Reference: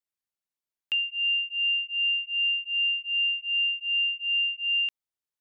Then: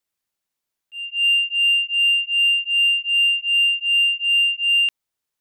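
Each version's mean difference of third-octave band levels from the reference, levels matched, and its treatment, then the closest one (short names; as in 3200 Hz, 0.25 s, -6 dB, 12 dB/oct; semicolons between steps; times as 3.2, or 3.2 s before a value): 1.5 dB: in parallel at -10 dB: hard clip -29.5 dBFS, distortion -10 dB; on the sum: auto swell 0.334 s; gain +7 dB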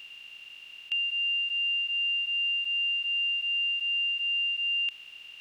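3.5 dB: per-bin compression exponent 0.2; high shelf 2500 Hz +7.5 dB; gain -8 dB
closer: first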